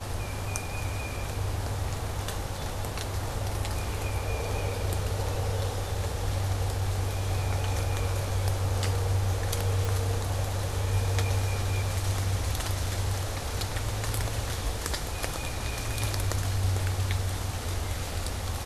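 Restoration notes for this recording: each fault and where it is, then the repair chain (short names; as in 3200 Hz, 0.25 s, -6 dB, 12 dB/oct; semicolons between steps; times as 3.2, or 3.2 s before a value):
9.85 pop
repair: de-click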